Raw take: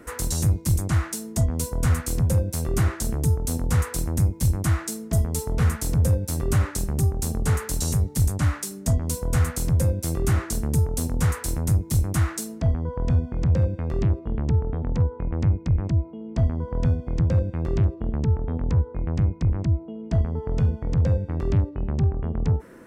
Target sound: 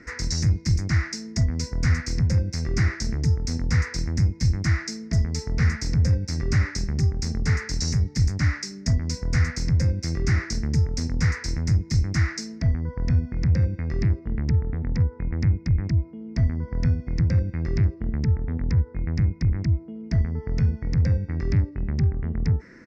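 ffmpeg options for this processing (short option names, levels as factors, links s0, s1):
-af "firequalizer=gain_entry='entry(220,0);entry(330,-3);entry(570,-9);entry(1100,-7);entry(2000,10);entry(3100,-12);entry(5100,10);entry(10000,-30)':delay=0.05:min_phase=1"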